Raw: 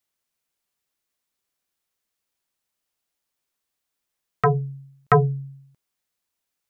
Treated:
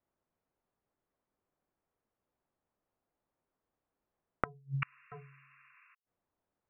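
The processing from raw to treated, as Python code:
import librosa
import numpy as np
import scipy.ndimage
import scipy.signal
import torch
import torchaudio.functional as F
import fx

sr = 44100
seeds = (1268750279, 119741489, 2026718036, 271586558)

y = fx.env_lowpass(x, sr, base_hz=900.0, full_db=-19.5)
y = fx.spec_paint(y, sr, seeds[0], shape='noise', start_s=4.82, length_s=1.13, low_hz=1000.0, high_hz=2800.0, level_db=-30.0)
y = fx.gate_flip(y, sr, shuts_db=-23.0, range_db=-40)
y = y * librosa.db_to_amplitude(6.0)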